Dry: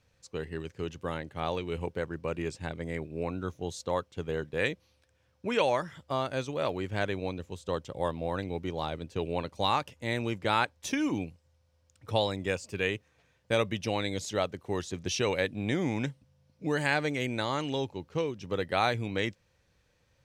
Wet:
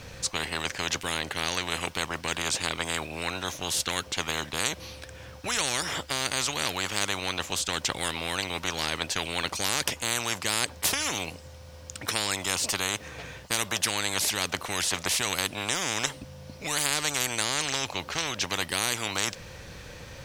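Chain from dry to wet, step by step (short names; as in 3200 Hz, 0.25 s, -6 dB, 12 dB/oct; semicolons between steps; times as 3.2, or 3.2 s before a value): spectral compressor 10:1; gain +4 dB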